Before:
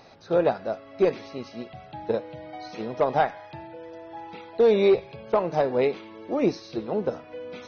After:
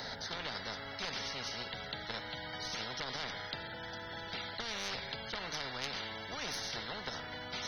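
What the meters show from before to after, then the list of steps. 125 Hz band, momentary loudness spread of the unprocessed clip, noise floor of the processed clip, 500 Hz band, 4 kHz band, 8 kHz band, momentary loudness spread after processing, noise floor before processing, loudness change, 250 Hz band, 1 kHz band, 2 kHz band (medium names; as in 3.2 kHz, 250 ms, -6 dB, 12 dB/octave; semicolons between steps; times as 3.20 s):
-11.0 dB, 19 LU, -45 dBFS, -23.5 dB, +6.0 dB, no reading, 4 LU, -47 dBFS, -14.5 dB, -19.0 dB, -13.0 dB, -1.0 dB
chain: tracing distortion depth 0.029 ms; static phaser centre 1.7 kHz, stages 8; peak limiter -21 dBFS, peak gain reduction 9 dB; spectrum-flattening compressor 10:1; trim +1 dB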